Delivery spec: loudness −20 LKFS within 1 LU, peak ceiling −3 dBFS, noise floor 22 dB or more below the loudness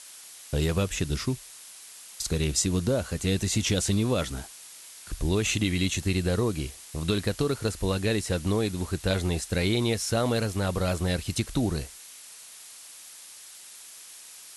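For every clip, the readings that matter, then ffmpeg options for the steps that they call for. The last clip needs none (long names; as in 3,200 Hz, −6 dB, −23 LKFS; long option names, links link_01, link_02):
background noise floor −47 dBFS; target noise floor −50 dBFS; integrated loudness −27.5 LKFS; sample peak −12.5 dBFS; target loudness −20.0 LKFS
→ -af "afftdn=noise_reduction=6:noise_floor=-47"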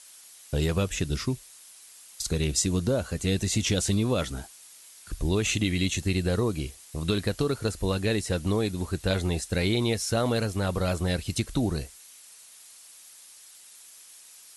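background noise floor −51 dBFS; integrated loudness −27.5 LKFS; sample peak −12.5 dBFS; target loudness −20.0 LKFS
→ -af "volume=7.5dB"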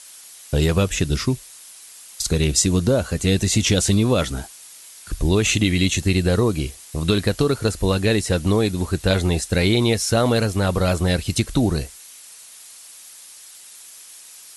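integrated loudness −20.0 LKFS; sample peak −5.0 dBFS; background noise floor −43 dBFS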